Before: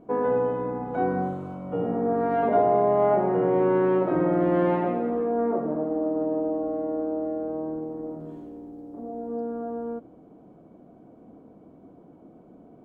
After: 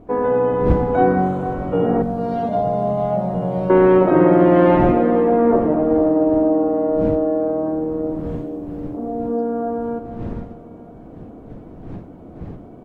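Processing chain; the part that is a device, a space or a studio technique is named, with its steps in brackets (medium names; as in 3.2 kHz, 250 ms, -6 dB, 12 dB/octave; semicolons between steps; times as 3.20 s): 2.02–3.70 s: FFT filter 200 Hz 0 dB, 370 Hz -21 dB, 570 Hz -7 dB, 1.9 kHz -20 dB, 4.4 kHz +6 dB; feedback delay 451 ms, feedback 38%, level -12 dB; smartphone video outdoors (wind noise 200 Hz -41 dBFS; level rider gain up to 4.5 dB; trim +5 dB; AAC 48 kbps 44.1 kHz)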